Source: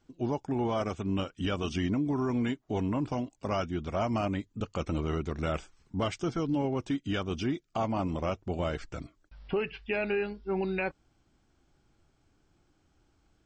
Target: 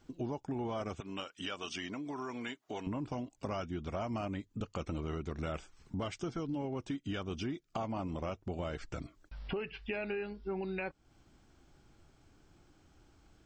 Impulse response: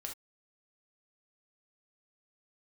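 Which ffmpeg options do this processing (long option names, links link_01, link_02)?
-filter_complex "[0:a]asettb=1/sr,asplit=3[link_01][link_02][link_03];[link_01]atrim=end=1.004[link_04];[link_02]atrim=start=1:end=2.87,asetpts=PTS-STARTPTS,afade=type=in:duration=0.004:curve=qsin,afade=type=out:start_time=1.866:duration=0.004:curve=qsin,highpass=frequency=1100:poles=1[link_05];[link_03]atrim=start=2.866[link_06];[link_04][link_05]acrossfade=duration=0.004:curve1=hsin:curve2=qsin[link_07];[link_07][link_06]acrossfade=duration=0.004:curve1=qsin:curve2=hsin,acompressor=threshold=-44dB:ratio=3,volume=5dB"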